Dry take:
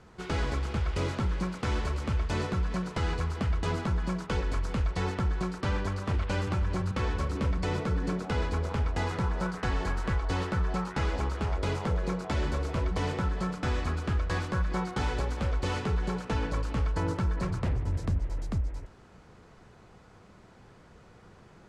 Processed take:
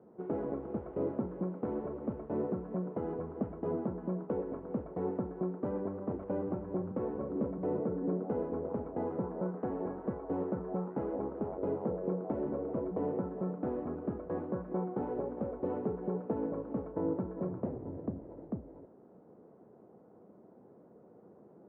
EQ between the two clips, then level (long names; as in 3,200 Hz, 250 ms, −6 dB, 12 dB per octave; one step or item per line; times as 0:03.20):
flat-topped band-pass 380 Hz, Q 0.84
high-frequency loss of the air 320 metres
+2.5 dB